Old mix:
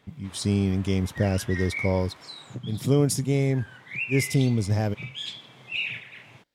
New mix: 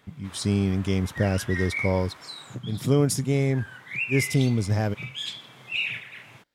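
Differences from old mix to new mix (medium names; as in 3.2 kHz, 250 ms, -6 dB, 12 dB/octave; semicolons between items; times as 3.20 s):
background: add treble shelf 9 kHz +11.5 dB; master: add peaking EQ 1.4 kHz +4.5 dB 0.94 oct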